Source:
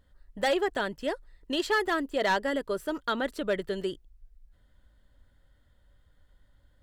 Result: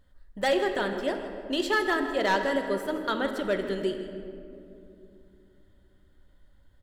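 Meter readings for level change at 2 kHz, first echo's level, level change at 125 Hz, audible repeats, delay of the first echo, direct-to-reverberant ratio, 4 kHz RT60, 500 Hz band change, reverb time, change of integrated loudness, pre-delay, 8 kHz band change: +1.5 dB, −14.5 dB, +3.0 dB, 1, 161 ms, 5.0 dB, 1.3 s, +2.0 dB, 2.7 s, +1.5 dB, 3 ms, +0.5 dB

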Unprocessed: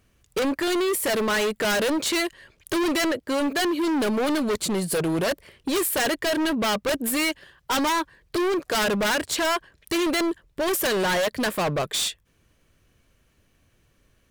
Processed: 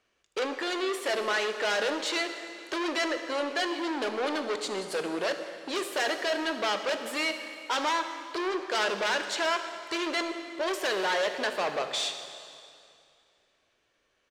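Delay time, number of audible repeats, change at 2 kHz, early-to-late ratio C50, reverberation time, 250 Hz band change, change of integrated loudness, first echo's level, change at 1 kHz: 75 ms, 1, −3.0 dB, 8.0 dB, 2.5 s, −10.5 dB, −5.5 dB, −18.5 dB, −3.5 dB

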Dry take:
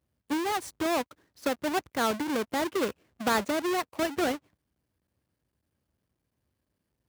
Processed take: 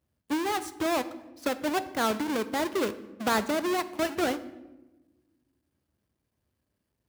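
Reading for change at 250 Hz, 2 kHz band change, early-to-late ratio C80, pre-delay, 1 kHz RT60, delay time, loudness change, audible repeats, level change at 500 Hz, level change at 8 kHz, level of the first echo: +1.0 dB, 0.0 dB, 17.0 dB, 3 ms, 0.95 s, no echo audible, +0.5 dB, no echo audible, +0.5 dB, 0.0 dB, no echo audible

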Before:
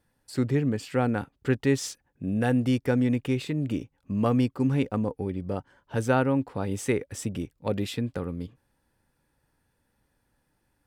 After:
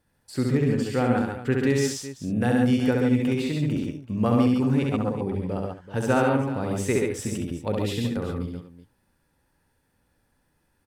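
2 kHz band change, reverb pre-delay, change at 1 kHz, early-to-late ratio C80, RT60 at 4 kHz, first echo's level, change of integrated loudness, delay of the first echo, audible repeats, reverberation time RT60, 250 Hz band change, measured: +3.0 dB, no reverb audible, +3.0 dB, no reverb audible, no reverb audible, −3.0 dB, +3.0 dB, 67 ms, 4, no reverb audible, +3.0 dB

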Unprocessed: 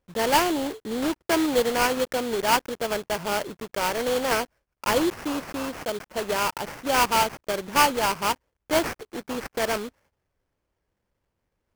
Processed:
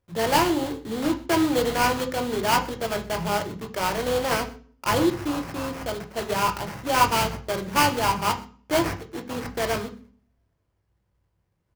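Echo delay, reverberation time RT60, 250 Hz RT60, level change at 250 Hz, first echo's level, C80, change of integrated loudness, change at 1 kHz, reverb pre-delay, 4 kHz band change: 124 ms, 0.45 s, 0.60 s, +2.0 dB, −22.0 dB, 17.5 dB, +0.5 dB, +1.0 dB, 3 ms, −0.5 dB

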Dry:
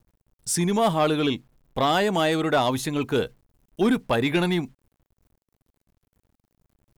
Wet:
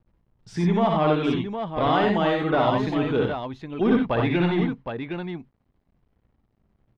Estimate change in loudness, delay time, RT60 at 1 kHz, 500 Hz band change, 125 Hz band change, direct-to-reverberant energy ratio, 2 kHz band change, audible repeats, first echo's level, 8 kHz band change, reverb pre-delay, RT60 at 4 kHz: 0.0 dB, 58 ms, no reverb audible, +1.0 dB, +3.0 dB, no reverb audible, −1.0 dB, 3, −4.5 dB, below −20 dB, no reverb audible, no reverb audible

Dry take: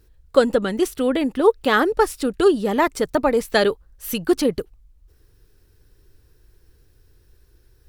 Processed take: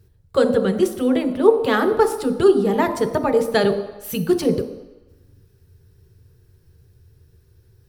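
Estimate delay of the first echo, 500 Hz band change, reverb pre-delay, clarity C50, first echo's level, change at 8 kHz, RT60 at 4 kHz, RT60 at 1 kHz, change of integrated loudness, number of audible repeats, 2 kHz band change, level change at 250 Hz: no echo audible, +1.5 dB, 3 ms, 9.5 dB, no echo audible, −2.0 dB, 1.0 s, 1.1 s, +1.0 dB, no echo audible, −3.0 dB, +1.5 dB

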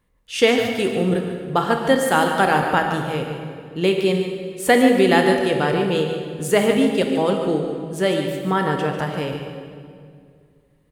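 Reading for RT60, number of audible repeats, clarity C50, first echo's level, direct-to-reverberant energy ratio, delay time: 2.2 s, 1, 3.5 dB, −9.5 dB, 2.5 dB, 146 ms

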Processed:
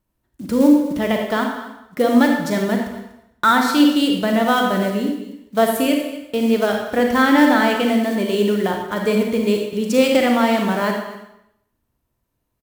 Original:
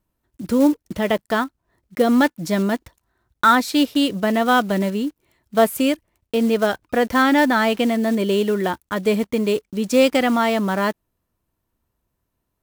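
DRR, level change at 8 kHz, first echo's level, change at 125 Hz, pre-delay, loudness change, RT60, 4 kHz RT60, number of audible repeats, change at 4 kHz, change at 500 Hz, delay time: 1.5 dB, +1.0 dB, −16.0 dB, can't be measured, 32 ms, +1.5 dB, 0.85 s, 0.80 s, 1, +1.5 dB, +1.5 dB, 243 ms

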